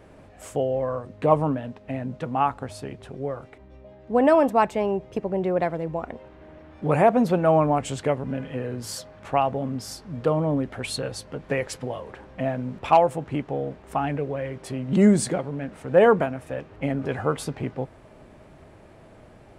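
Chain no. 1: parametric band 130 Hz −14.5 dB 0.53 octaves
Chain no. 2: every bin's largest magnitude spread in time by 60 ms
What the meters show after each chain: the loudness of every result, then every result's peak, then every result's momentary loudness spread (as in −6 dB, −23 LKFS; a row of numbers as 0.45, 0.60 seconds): −25.5, −21.5 LKFS; −5.5, −2.0 dBFS; 16, 15 LU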